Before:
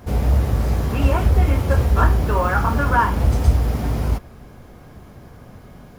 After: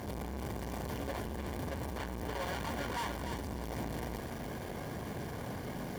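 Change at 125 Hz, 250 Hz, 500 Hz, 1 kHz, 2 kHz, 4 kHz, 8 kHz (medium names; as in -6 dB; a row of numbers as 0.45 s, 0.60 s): -22.5 dB, -14.0 dB, -14.0 dB, -18.0 dB, -16.0 dB, -8.5 dB, -9.0 dB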